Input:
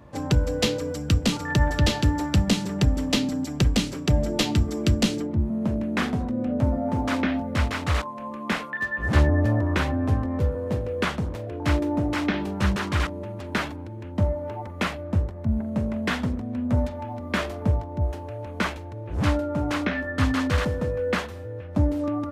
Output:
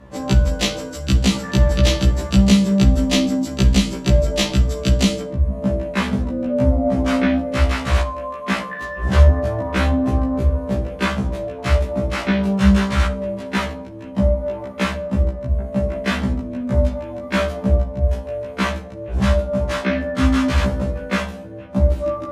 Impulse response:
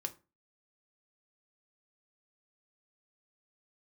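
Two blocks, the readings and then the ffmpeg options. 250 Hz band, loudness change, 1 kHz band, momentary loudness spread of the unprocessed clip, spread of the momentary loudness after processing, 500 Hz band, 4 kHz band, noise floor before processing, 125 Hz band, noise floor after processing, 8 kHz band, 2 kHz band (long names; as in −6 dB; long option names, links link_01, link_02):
+6.0 dB, +6.0 dB, +3.5 dB, 7 LU, 9 LU, +7.0 dB, +5.0 dB, −36 dBFS, +5.5 dB, −33 dBFS, +5.5 dB, +3.5 dB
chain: -filter_complex "[0:a]bandreject=frequency=45.69:width_type=h:width=4,bandreject=frequency=91.38:width_type=h:width=4,bandreject=frequency=137.07:width_type=h:width=4,bandreject=frequency=182.76:width_type=h:width=4,bandreject=frequency=228.45:width_type=h:width=4,bandreject=frequency=274.14:width_type=h:width=4,bandreject=frequency=319.83:width_type=h:width=4,bandreject=frequency=365.52:width_type=h:width=4,bandreject=frequency=411.21:width_type=h:width=4,bandreject=frequency=456.9:width_type=h:width=4,bandreject=frequency=502.59:width_type=h:width=4,bandreject=frequency=548.28:width_type=h:width=4,bandreject=frequency=593.97:width_type=h:width=4,bandreject=frequency=639.66:width_type=h:width=4,bandreject=frequency=685.35:width_type=h:width=4,bandreject=frequency=731.04:width_type=h:width=4,bandreject=frequency=776.73:width_type=h:width=4,bandreject=frequency=822.42:width_type=h:width=4,bandreject=frequency=868.11:width_type=h:width=4,acontrast=42,asplit=2[link_01][link_02];[1:a]atrim=start_sample=2205,asetrate=24696,aresample=44100[link_03];[link_02][link_03]afir=irnorm=-1:irlink=0,volume=3dB[link_04];[link_01][link_04]amix=inputs=2:normalize=0,afftfilt=real='re*1.73*eq(mod(b,3),0)':imag='im*1.73*eq(mod(b,3),0)':win_size=2048:overlap=0.75,volume=-7dB"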